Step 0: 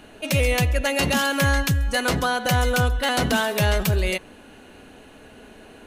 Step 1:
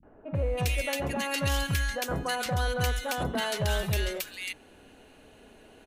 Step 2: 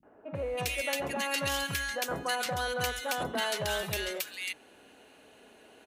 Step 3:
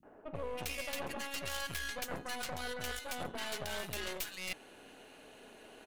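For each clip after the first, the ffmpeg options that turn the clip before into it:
ffmpeg -i in.wav -filter_complex "[0:a]acrossover=split=200|1400[link_01][link_02][link_03];[link_02]adelay=30[link_04];[link_03]adelay=350[link_05];[link_01][link_04][link_05]amix=inputs=3:normalize=0,volume=-7dB" out.wav
ffmpeg -i in.wav -af "highpass=frequency=370:poles=1" out.wav
ffmpeg -i in.wav -af "areverse,acompressor=threshold=-40dB:ratio=6,areverse,aeval=exprs='0.0316*(cos(1*acos(clip(val(0)/0.0316,-1,1)))-cos(1*PI/2))+0.01*(cos(4*acos(clip(val(0)/0.0316,-1,1)))-cos(4*PI/2))':channel_layout=same,volume=1dB" out.wav

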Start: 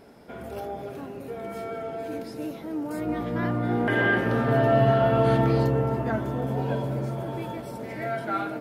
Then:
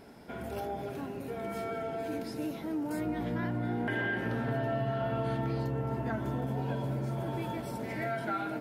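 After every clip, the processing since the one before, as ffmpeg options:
ffmpeg -i in.wav -af "equalizer=frequency=510:width_type=o:width=0.72:gain=-4.5,bandreject=frequency=1200:width=15,acompressor=threshold=-30dB:ratio=5" out.wav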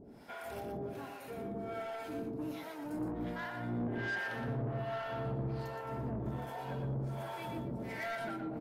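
ffmpeg -i in.wav -filter_complex "[0:a]acrossover=split=590[link_01][link_02];[link_01]aeval=exprs='val(0)*(1-1/2+1/2*cos(2*PI*1.3*n/s))':channel_layout=same[link_03];[link_02]aeval=exprs='val(0)*(1-1/2-1/2*cos(2*PI*1.3*n/s))':channel_layout=same[link_04];[link_03][link_04]amix=inputs=2:normalize=0,asoftclip=type=tanh:threshold=-35dB,aecho=1:1:118:0.473,volume=1.5dB" out.wav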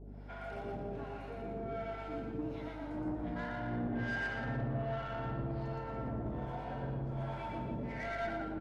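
ffmpeg -i in.wav -af "aecho=1:1:116.6|163.3|288.6:0.708|0.355|0.316,aeval=exprs='val(0)+0.00501*(sin(2*PI*50*n/s)+sin(2*PI*2*50*n/s)/2+sin(2*PI*3*50*n/s)/3+sin(2*PI*4*50*n/s)/4+sin(2*PI*5*50*n/s)/5)':channel_layout=same,adynamicsmooth=sensitivity=5:basefreq=3400,volume=-2dB" out.wav

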